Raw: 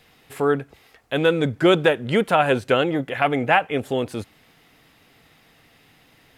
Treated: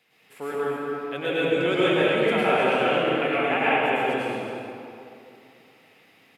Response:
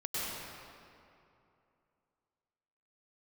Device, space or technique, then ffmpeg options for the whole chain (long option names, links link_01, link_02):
stadium PA: -filter_complex "[0:a]highpass=200,equalizer=frequency=2400:width_type=o:width=0.54:gain=6,aecho=1:1:215.7|265.3:0.282|0.282[link_01];[1:a]atrim=start_sample=2205[link_02];[link_01][link_02]afir=irnorm=-1:irlink=0,volume=-8.5dB"